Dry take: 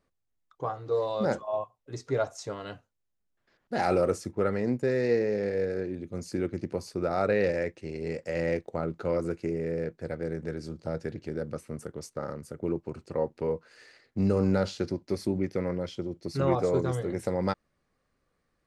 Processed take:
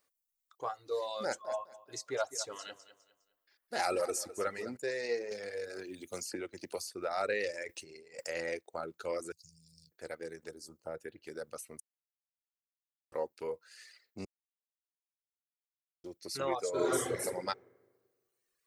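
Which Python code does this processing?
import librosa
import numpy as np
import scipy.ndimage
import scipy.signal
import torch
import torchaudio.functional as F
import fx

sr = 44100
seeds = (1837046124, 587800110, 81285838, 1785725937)

y = fx.echo_feedback(x, sr, ms=205, feedback_pct=38, wet_db=-9.0, at=(1.24, 4.77))
y = fx.band_squash(y, sr, depth_pct=100, at=(5.31, 6.92))
y = fx.over_compress(y, sr, threshold_db=-42.0, ratio=-1.0, at=(7.67, 8.26), fade=0.02)
y = fx.ellip_bandstop(y, sr, low_hz=150.0, high_hz=4400.0, order=3, stop_db=40, at=(9.32, 9.92))
y = fx.peak_eq(y, sr, hz=fx.line((10.48, 2000.0), (11.25, 7000.0)), db=-14.0, octaves=1.5, at=(10.48, 11.25), fade=0.02)
y = fx.reverb_throw(y, sr, start_s=16.71, length_s=0.51, rt60_s=1.5, drr_db=-7.5)
y = fx.edit(y, sr, fx.silence(start_s=11.8, length_s=1.32),
    fx.silence(start_s=14.25, length_s=1.79), tone=tone)
y = fx.riaa(y, sr, side='recording')
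y = fx.dereverb_blind(y, sr, rt60_s=1.3)
y = fx.peak_eq(y, sr, hz=170.0, db=-7.0, octaves=1.2)
y = F.gain(torch.from_numpy(y), -3.5).numpy()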